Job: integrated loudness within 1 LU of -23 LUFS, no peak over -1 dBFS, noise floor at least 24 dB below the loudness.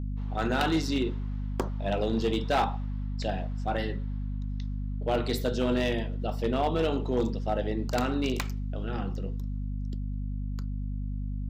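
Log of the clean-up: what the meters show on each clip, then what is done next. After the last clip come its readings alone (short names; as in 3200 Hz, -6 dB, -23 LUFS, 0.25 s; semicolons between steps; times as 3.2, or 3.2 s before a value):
clipped 0.9%; flat tops at -19.5 dBFS; hum 50 Hz; harmonics up to 250 Hz; hum level -30 dBFS; loudness -30.5 LUFS; peak -19.5 dBFS; loudness target -23.0 LUFS
-> clip repair -19.5 dBFS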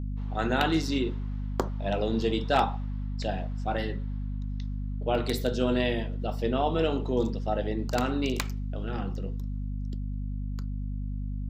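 clipped 0.0%; hum 50 Hz; harmonics up to 250 Hz; hum level -30 dBFS
-> notches 50/100/150/200/250 Hz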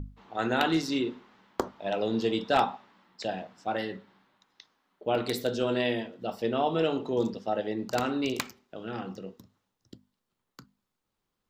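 hum none; loudness -30.5 LUFS; peak -9.5 dBFS; loudness target -23.0 LUFS
-> gain +7.5 dB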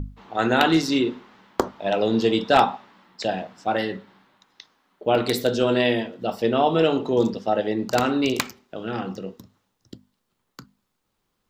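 loudness -23.0 LUFS; peak -2.0 dBFS; noise floor -76 dBFS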